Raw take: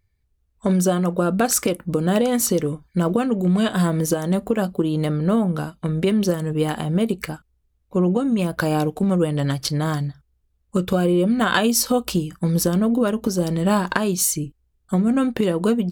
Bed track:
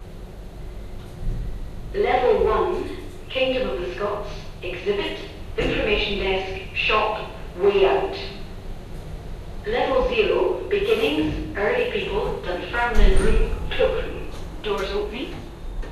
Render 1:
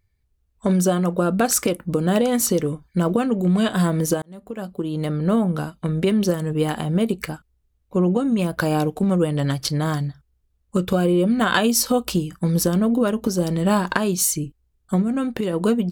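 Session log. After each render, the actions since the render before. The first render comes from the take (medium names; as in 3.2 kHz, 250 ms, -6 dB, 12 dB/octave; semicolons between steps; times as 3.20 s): 4.22–5.33 s: fade in; 15.02–15.53 s: compression 1.5:1, threshold -26 dBFS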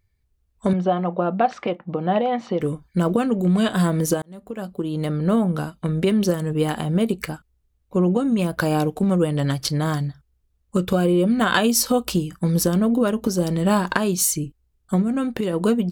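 0.73–2.61 s: cabinet simulation 190–3000 Hz, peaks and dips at 270 Hz -9 dB, 440 Hz -5 dB, 770 Hz +8 dB, 1.5 kHz -6 dB, 2.5 kHz -3 dB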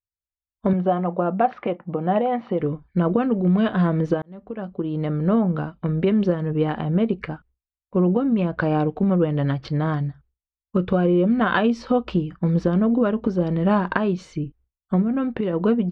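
expander -45 dBFS; Bessel low-pass 2.1 kHz, order 4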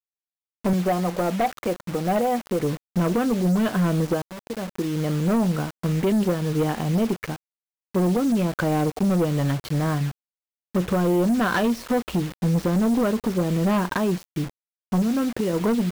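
word length cut 6-bit, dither none; hard clipper -17 dBFS, distortion -13 dB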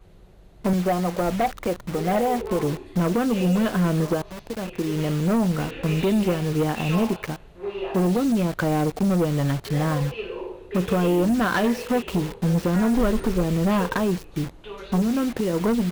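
add bed track -13 dB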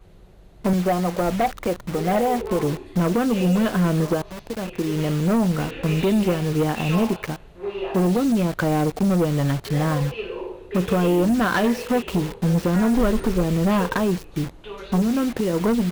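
trim +1.5 dB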